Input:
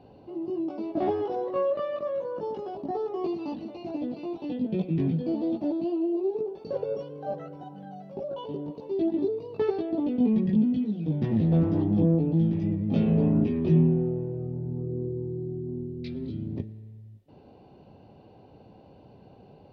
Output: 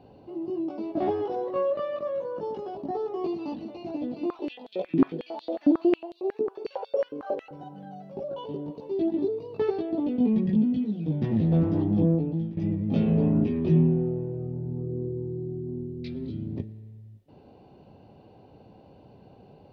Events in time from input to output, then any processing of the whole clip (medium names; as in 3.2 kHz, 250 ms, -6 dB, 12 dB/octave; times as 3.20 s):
4.21–7.51 s: step-sequenced high-pass 11 Hz 260–3800 Hz
12.09–12.57 s: fade out, to -13.5 dB